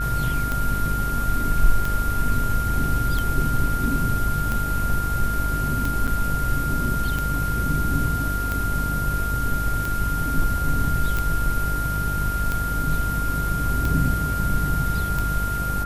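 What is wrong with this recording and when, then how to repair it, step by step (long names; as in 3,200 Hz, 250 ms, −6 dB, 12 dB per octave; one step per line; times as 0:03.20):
mains buzz 50 Hz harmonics 14 −27 dBFS
scratch tick 45 rpm −12 dBFS
whistle 1,400 Hz −26 dBFS
0:06.07–0:06.08: drop-out 6.9 ms
0:11.17: click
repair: click removal
hum removal 50 Hz, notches 14
notch filter 1,400 Hz, Q 30
repair the gap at 0:06.07, 6.9 ms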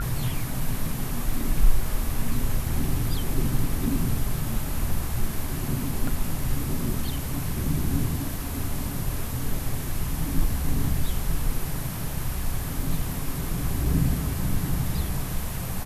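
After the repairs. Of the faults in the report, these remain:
none of them is left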